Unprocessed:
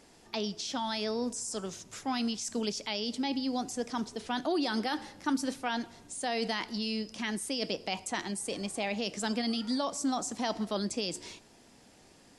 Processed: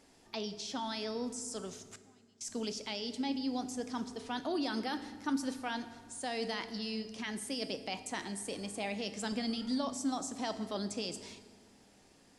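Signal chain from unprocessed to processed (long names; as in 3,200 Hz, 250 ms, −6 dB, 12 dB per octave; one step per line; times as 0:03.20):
0:01.92–0:02.41: gate with flip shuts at −34 dBFS, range −31 dB
0:09.32–0:09.94: low-shelf EQ 88 Hz +12 dB
convolution reverb RT60 1.7 s, pre-delay 4 ms, DRR 10.5 dB
level −5 dB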